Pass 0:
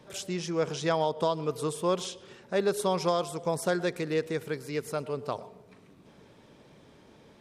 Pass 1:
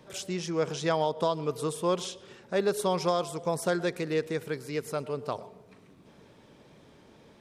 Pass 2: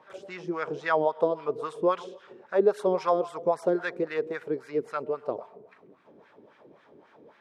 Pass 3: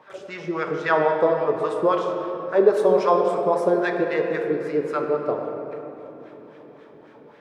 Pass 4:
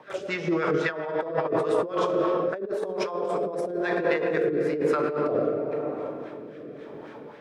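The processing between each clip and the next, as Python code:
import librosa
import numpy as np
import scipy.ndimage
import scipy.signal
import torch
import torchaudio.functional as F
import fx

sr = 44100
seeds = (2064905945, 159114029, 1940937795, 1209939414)

y1 = fx.wow_flutter(x, sr, seeds[0], rate_hz=2.1, depth_cents=25.0)
y2 = fx.wah_lfo(y1, sr, hz=3.7, low_hz=330.0, high_hz=1700.0, q=2.1)
y2 = y2 * librosa.db_to_amplitude(8.0)
y3 = fx.room_shoebox(y2, sr, seeds[1], volume_m3=210.0, walls='hard', distance_m=0.36)
y3 = y3 * librosa.db_to_amplitude(4.5)
y4 = fx.over_compress(y3, sr, threshold_db=-27.0, ratio=-1.0)
y4 = fx.rotary_switch(y4, sr, hz=5.5, then_hz=1.0, switch_at_s=1.65)
y4 = y4 * librosa.db_to_amplitude(2.5)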